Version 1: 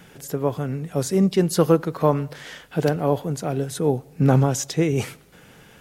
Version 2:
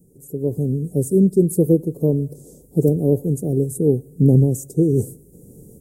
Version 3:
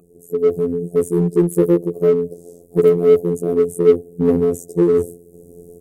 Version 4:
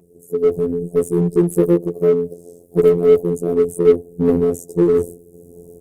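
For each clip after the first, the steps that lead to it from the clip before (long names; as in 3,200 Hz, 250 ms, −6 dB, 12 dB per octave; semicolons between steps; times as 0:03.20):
elliptic band-stop filter 420–8,400 Hz, stop band 70 dB; dynamic equaliser 5,400 Hz, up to −6 dB, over −48 dBFS, Q 1.2; automatic gain control gain up to 14.5 dB; level −3.5 dB
phases set to zero 86.4 Hz; hollow resonant body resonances 430/690/1,200/2,500 Hz, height 13 dB, ringing for 25 ms; in parallel at −5 dB: gain into a clipping stage and back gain 14 dB; on the sum: level −5 dB
Opus 20 kbit/s 48,000 Hz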